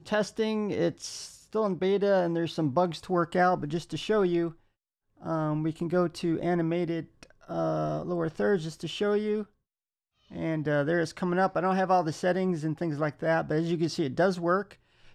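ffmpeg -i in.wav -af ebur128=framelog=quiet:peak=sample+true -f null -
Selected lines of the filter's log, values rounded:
Integrated loudness:
  I:         -28.5 LUFS
  Threshold: -38.8 LUFS
Loudness range:
  LRA:         3.5 LU
  Threshold: -49.0 LUFS
  LRA low:   -31.0 LUFS
  LRA high:  -27.5 LUFS
Sample peak:
  Peak:      -13.7 dBFS
True peak:
  Peak:      -13.7 dBFS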